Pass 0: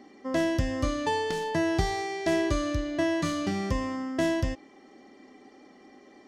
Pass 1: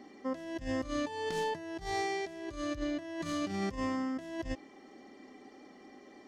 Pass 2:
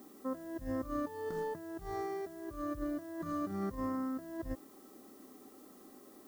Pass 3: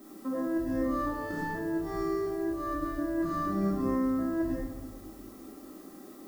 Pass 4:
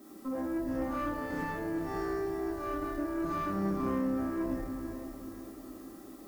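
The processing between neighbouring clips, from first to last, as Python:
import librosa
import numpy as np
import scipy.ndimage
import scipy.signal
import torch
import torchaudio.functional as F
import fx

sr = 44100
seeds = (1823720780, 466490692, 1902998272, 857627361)

y1 = fx.over_compress(x, sr, threshold_db=-31.0, ratio=-0.5)
y1 = y1 * 10.0 ** (-4.5 / 20.0)
y2 = fx.high_shelf_res(y1, sr, hz=1800.0, db=-13.0, q=3.0)
y2 = fx.dmg_noise_colour(y2, sr, seeds[0], colour='blue', level_db=-61.0)
y2 = fx.peak_eq(y2, sr, hz=890.0, db=-9.5, octaves=0.81)
y2 = y2 * 10.0 ** (-2.0 / 20.0)
y3 = fx.room_shoebox(y2, sr, seeds[1], volume_m3=500.0, walls='mixed', distance_m=2.8)
y4 = fx.tube_stage(y3, sr, drive_db=26.0, bias=0.5)
y4 = fx.echo_diffused(y4, sr, ms=472, feedback_pct=42, wet_db=-8.5)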